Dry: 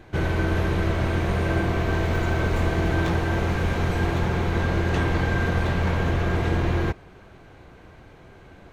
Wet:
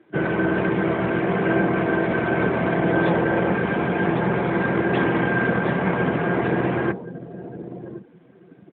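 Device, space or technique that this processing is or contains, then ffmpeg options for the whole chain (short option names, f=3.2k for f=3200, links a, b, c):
mobile call with aggressive noise cancelling: -filter_complex "[0:a]bandreject=f=57.31:t=h:w=4,bandreject=f=114.62:t=h:w=4,bandreject=f=171.93:t=h:w=4,bandreject=f=229.24:t=h:w=4,bandreject=f=286.55:t=h:w=4,bandreject=f=343.86:t=h:w=4,bandreject=f=401.17:t=h:w=4,bandreject=f=458.48:t=h:w=4,bandreject=f=515.79:t=h:w=4,bandreject=f=573.1:t=h:w=4,bandreject=f=630.41:t=h:w=4,bandreject=f=687.72:t=h:w=4,bandreject=f=745.03:t=h:w=4,bandreject=f=802.34:t=h:w=4,bandreject=f=859.65:t=h:w=4,bandreject=f=916.96:t=h:w=4,bandreject=f=974.27:t=h:w=4,bandreject=f=1.03158k:t=h:w=4,bandreject=f=1.08889k:t=h:w=4,bandreject=f=1.1462k:t=h:w=4,bandreject=f=1.20351k:t=h:w=4,bandreject=f=1.26082k:t=h:w=4,bandreject=f=1.31813k:t=h:w=4,bandreject=f=1.37544k:t=h:w=4,bandreject=f=1.43275k:t=h:w=4,asettb=1/sr,asplit=3[a][b][c];[a]atrim=end=2.804[d];[b]atrim=start=2.8:end=3.54,asetpts=PTS-STARTPTS,afade=t=in:d=0.004:c=qsin,afade=t=out:st=0.736:d=0.004:c=qsin,adynamicequalizer=threshold=0.00501:dfrequency=520:dqfactor=4.4:tfrequency=520:tqfactor=4.4:attack=5:release=100:ratio=0.375:range=3:mode=boostabove:tftype=bell[e];[c]atrim=start=3.536[f];[d][e]acrossfade=d=0.004:c1=hsin:c2=qsin[g];[g][f]acrossfade=d=0.004:c1=qsin:c2=hsin,highpass=f=150:w=0.5412,highpass=f=150:w=1.3066,asplit=2[h][i];[i]adelay=1073,lowpass=f=830:p=1,volume=-11.5dB,asplit=2[j][k];[k]adelay=1073,lowpass=f=830:p=1,volume=0.24,asplit=2[l][m];[m]adelay=1073,lowpass=f=830:p=1,volume=0.24[n];[h][j][l][n]amix=inputs=4:normalize=0,afftdn=nr=14:nf=-37,volume=6.5dB" -ar 8000 -c:a libopencore_amrnb -b:a 12200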